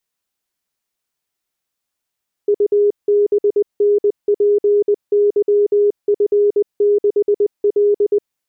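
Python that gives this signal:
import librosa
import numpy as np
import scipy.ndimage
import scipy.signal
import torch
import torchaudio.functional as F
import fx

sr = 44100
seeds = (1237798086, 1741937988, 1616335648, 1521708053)

y = fx.morse(sr, text='UBNPYF6L', wpm=20, hz=411.0, level_db=-10.0)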